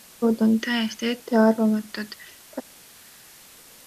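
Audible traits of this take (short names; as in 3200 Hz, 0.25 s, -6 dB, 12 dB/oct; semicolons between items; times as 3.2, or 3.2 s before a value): phasing stages 2, 0.87 Hz, lowest notch 470–2400 Hz; a quantiser's noise floor 8-bit, dither triangular; MP2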